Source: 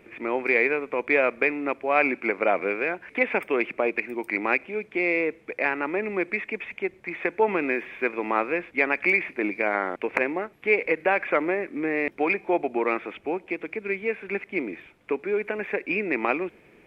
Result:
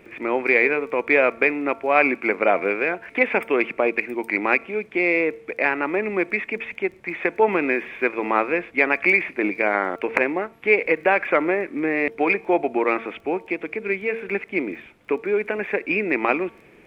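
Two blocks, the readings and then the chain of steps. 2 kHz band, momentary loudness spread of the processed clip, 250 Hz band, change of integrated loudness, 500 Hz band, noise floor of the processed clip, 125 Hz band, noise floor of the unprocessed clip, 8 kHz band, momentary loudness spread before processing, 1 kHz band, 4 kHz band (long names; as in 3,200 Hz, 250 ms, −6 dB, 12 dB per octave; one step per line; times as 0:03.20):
+4.0 dB, 9 LU, +4.0 dB, +4.0 dB, +4.0 dB, −50 dBFS, +4.0 dB, −56 dBFS, can't be measured, 8 LU, +4.0 dB, +4.0 dB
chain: hum removal 227.2 Hz, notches 6
surface crackle 12 per second −46 dBFS
level +4 dB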